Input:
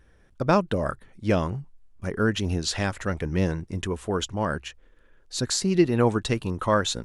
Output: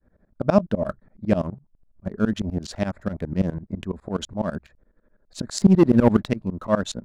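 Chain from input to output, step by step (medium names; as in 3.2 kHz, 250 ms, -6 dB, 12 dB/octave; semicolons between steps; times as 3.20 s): local Wiener filter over 15 samples; 1.54–2.06 s: compression 4:1, threshold -46 dBFS, peak gain reduction 13.5 dB; 5.58–6.26 s: waveshaping leveller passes 2; small resonant body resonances 210/610 Hz, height 10 dB, ringing for 35 ms; tremolo saw up 12 Hz, depth 100%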